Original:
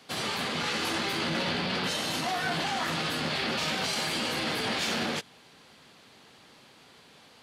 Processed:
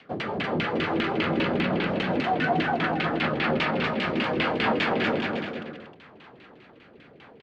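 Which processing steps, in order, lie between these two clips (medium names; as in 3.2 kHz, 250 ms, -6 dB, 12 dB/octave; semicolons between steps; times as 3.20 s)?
rotary cabinet horn 5 Hz, later 0.7 Hz, at 2.88 s; LFO low-pass saw down 5 Hz 260–2900 Hz; bouncing-ball echo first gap 240 ms, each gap 0.75×, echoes 5; trim +5 dB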